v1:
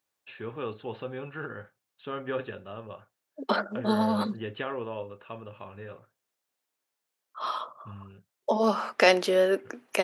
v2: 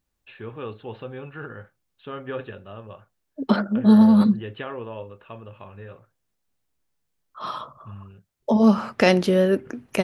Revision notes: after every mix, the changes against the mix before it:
second voice: remove high-pass filter 430 Hz 12 dB per octave
master: remove high-pass filter 150 Hz 6 dB per octave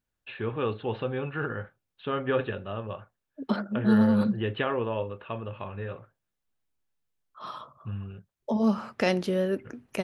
first voice +5.0 dB
second voice −8.0 dB

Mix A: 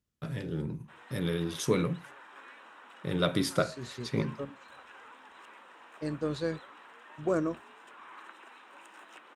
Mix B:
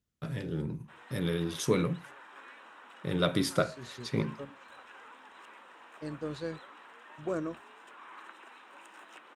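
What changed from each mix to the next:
second voice −5.0 dB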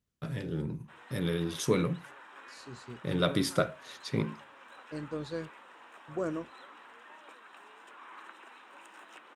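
second voice: entry −1.10 s

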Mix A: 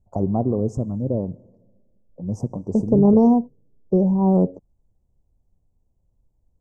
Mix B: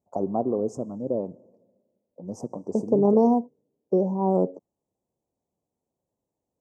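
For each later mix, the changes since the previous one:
master: add high-pass filter 310 Hz 12 dB per octave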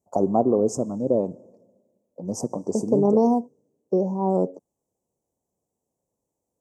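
first voice +5.5 dB
master: add high-shelf EQ 3,900 Hz +11.5 dB

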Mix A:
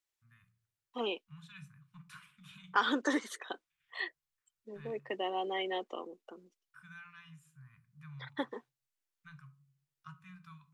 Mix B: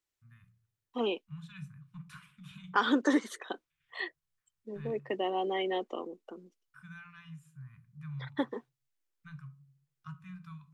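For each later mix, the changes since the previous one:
master: add low-shelf EQ 440 Hz +9 dB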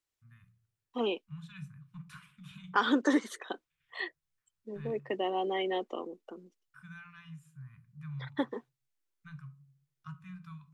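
nothing changed

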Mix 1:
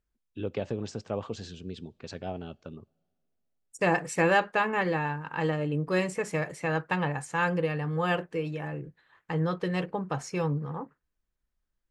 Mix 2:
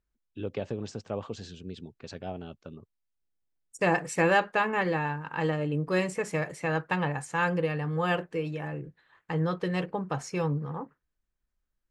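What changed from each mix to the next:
reverb: off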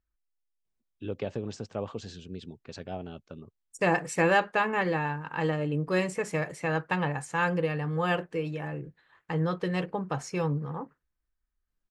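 first voice: entry +0.65 s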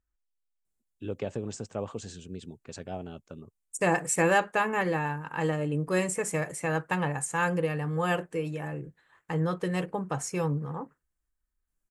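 master: add high shelf with overshoot 6,200 Hz +10 dB, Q 1.5

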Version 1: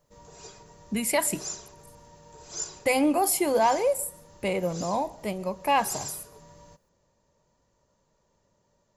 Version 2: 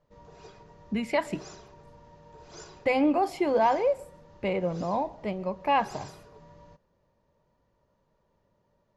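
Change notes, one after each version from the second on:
master: add high-frequency loss of the air 230 metres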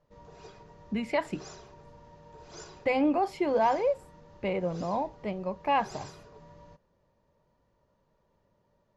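speech: add high-shelf EQ 10,000 Hz −11 dB
reverb: off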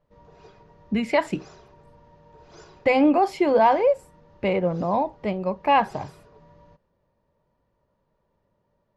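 speech +7.5 dB
background: add high-frequency loss of the air 110 metres

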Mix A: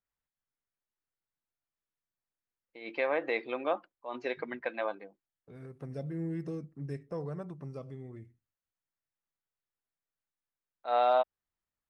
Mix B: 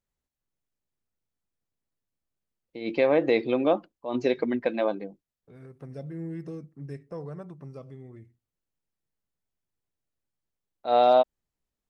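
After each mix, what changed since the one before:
first voice: remove resonant band-pass 1,500 Hz, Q 1.1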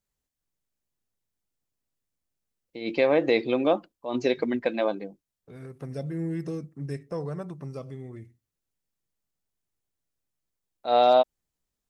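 second voice +5.0 dB
master: add high-shelf EQ 3,900 Hz +8 dB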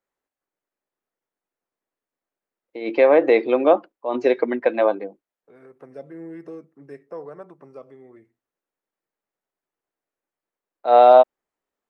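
first voice +8.5 dB
master: add three-way crossover with the lows and the highs turned down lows −23 dB, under 290 Hz, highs −16 dB, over 2,200 Hz

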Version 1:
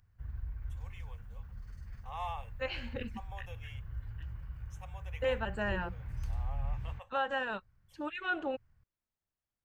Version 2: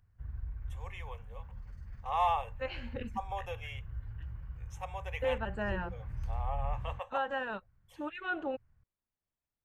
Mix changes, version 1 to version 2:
first voice +11.5 dB
master: add high-shelf EQ 2,700 Hz −8 dB

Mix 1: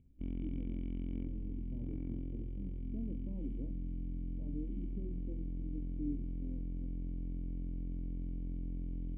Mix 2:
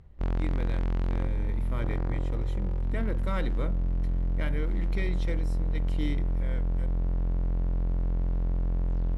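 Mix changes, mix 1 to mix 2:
speech: remove Chebyshev low-pass filter 940 Hz, order 10
master: remove formant resonators in series i

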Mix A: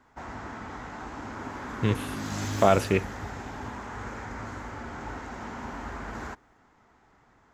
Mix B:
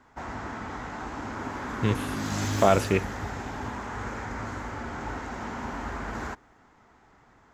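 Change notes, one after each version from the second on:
background +3.0 dB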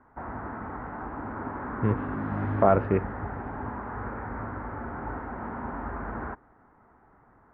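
master: add low-pass filter 1,600 Hz 24 dB per octave

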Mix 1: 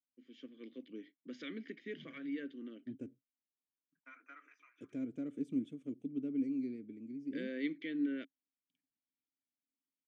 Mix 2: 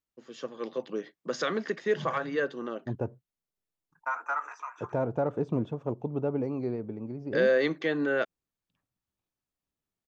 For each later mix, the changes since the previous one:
second voice: add Gaussian smoothing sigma 2.4 samples
master: remove formant filter i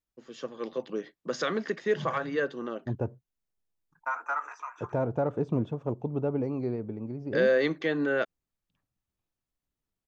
master: add low-shelf EQ 63 Hz +11.5 dB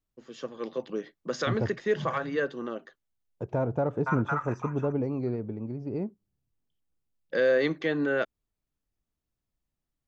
second voice: entry −1.40 s
master: add low-shelf EQ 110 Hz +5 dB

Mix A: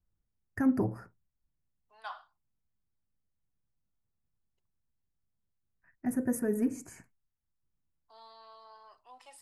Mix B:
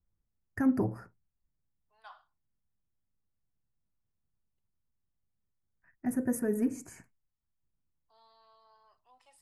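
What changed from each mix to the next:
second voice −9.5 dB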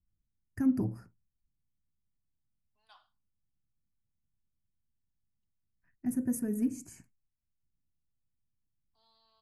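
second voice: entry +0.85 s
master: add flat-topped bell 910 Hz −10 dB 2.7 octaves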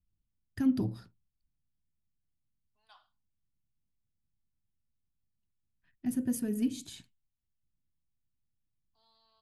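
first voice: remove Butterworth band-reject 3,600 Hz, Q 0.89

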